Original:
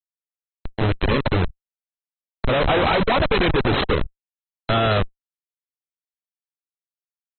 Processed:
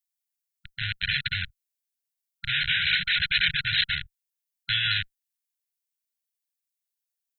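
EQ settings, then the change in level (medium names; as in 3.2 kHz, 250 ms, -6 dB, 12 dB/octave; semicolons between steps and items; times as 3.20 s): brick-wall FIR band-stop 170–1400 Hz; tilt EQ +3.5 dB/octave; -2.5 dB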